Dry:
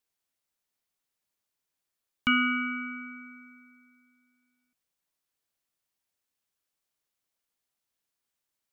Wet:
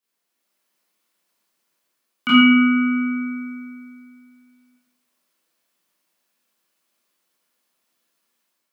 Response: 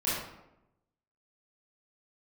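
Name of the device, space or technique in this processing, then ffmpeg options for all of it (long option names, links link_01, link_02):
far laptop microphone: -filter_complex "[1:a]atrim=start_sample=2205[link_01];[0:a][link_01]afir=irnorm=-1:irlink=0,highpass=frequency=180:width=0.5412,highpass=frequency=180:width=1.3066,dynaudnorm=framelen=170:gausssize=5:maxgain=5.5dB"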